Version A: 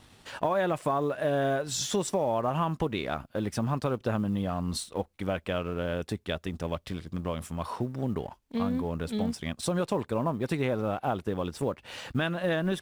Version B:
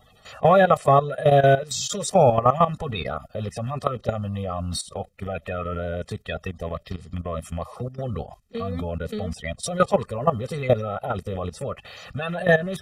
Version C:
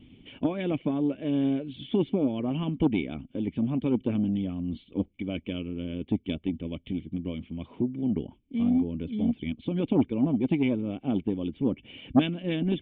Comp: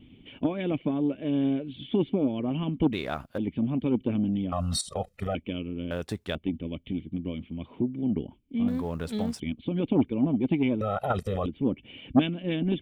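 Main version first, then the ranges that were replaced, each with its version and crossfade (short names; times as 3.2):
C
2.93–3.38 from A
4.52–5.35 from B
5.91–6.35 from A
8.68–9.4 from A
10.81–11.46 from B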